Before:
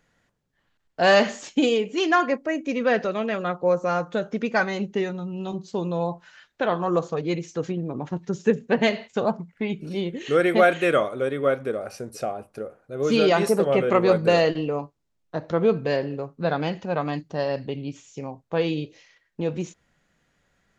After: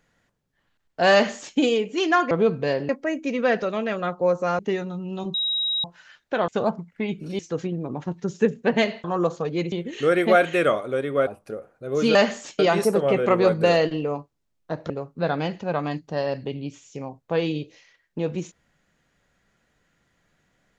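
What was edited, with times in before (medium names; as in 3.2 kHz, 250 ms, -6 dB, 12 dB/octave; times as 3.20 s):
1.13–1.57 s: copy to 13.23 s
4.01–4.87 s: delete
5.62–6.12 s: bleep 3.82 kHz -21.5 dBFS
6.76–7.44 s: swap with 9.09–10.00 s
11.55–12.35 s: delete
15.54–16.12 s: move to 2.31 s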